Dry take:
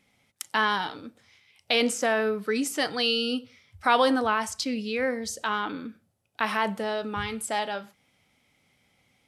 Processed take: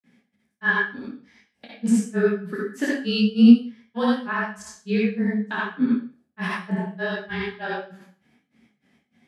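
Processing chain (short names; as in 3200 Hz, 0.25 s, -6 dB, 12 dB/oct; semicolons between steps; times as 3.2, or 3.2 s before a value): HPF 130 Hz; high shelf 5300 Hz -6.5 dB; limiter -18.5 dBFS, peak gain reduction 8.5 dB; small resonant body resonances 250/1700 Hz, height 17 dB, ringing for 40 ms; frequency shift -20 Hz; grains 0.155 s, grains 3.3/s, spray 0.1 s, pitch spread up and down by 0 st; reverb RT60 0.40 s, pre-delay 48 ms, DRR -4 dB; detuned doubles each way 48 cents; gain +4 dB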